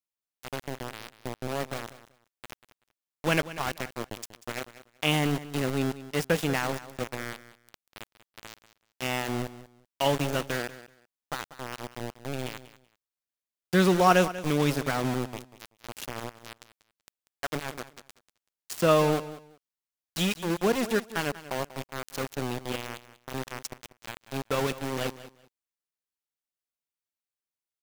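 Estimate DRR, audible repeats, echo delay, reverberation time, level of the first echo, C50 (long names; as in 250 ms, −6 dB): no reverb audible, 2, 190 ms, no reverb audible, −15.5 dB, no reverb audible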